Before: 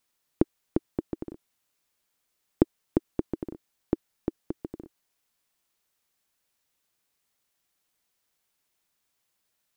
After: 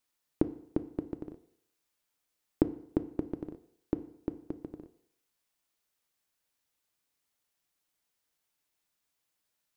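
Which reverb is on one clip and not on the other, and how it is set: FDN reverb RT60 0.7 s, low-frequency decay 0.85×, high-frequency decay 0.9×, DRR 10 dB; trim -5 dB

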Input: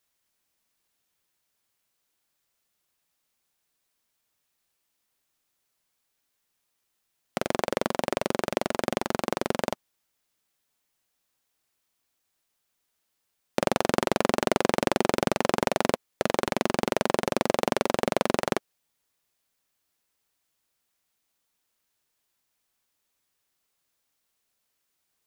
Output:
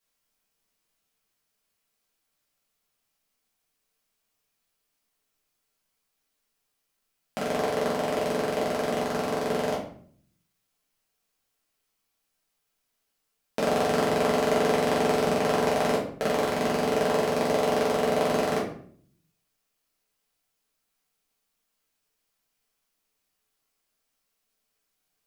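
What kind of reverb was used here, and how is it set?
simulated room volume 71 m³, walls mixed, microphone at 1.6 m; trim -7.5 dB

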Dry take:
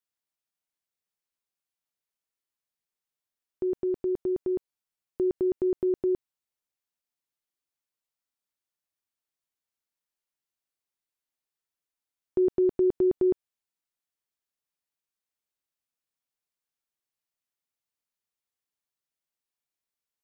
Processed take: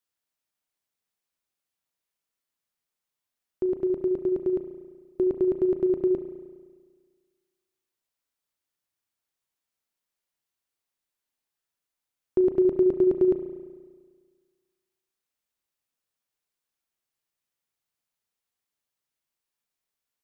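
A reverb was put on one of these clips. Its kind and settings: spring tank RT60 1.6 s, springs 34 ms, chirp 30 ms, DRR 7 dB; trim +3 dB

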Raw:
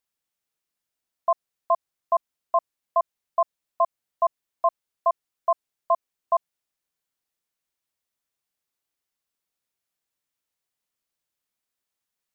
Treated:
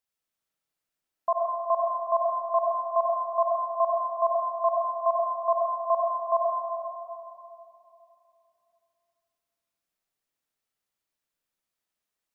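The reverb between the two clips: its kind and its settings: algorithmic reverb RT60 2.9 s, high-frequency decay 0.4×, pre-delay 45 ms, DRR -2 dB; trim -4 dB

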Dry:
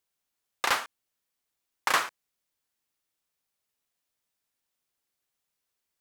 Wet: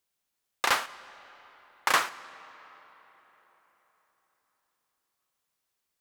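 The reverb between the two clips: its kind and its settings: algorithmic reverb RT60 4.4 s, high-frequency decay 0.65×, pre-delay 30 ms, DRR 17 dB; trim +1 dB

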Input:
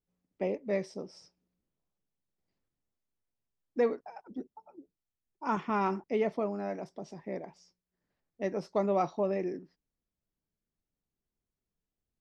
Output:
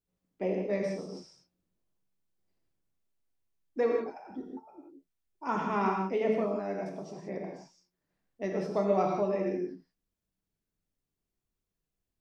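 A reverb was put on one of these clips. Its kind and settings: gated-style reverb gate 200 ms flat, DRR 0 dB; trim -1.5 dB

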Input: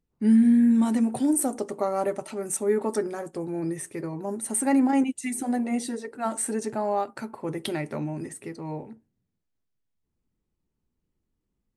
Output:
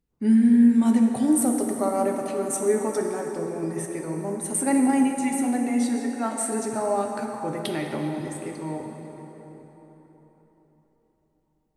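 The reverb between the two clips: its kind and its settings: plate-style reverb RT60 4.3 s, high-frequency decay 0.65×, DRR 2 dB

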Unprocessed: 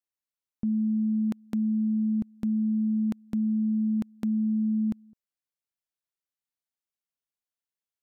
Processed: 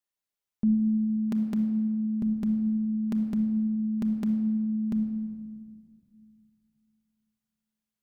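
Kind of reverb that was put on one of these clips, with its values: simulated room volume 2800 m³, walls mixed, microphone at 1.3 m; trim +1 dB

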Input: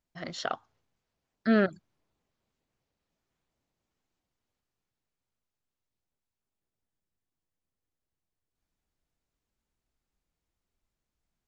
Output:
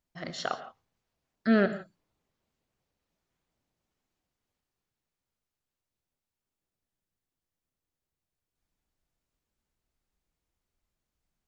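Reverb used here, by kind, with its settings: gated-style reverb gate 190 ms flat, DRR 10 dB

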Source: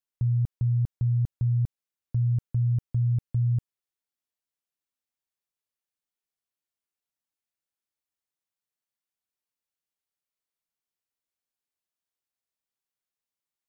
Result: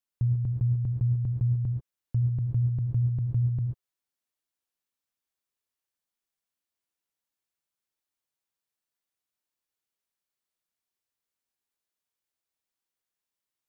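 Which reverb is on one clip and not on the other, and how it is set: gated-style reverb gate 160 ms rising, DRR 3.5 dB

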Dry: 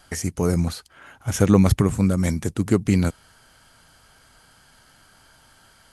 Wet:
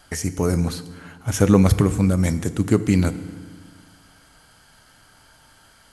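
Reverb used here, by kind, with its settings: FDN reverb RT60 1.6 s, low-frequency decay 1.25×, high-frequency decay 0.85×, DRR 12 dB; trim +1 dB

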